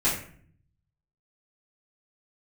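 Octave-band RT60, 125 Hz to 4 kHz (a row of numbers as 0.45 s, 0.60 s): 1.2 s, 0.85 s, 0.55 s, 0.50 s, 0.50 s, 0.35 s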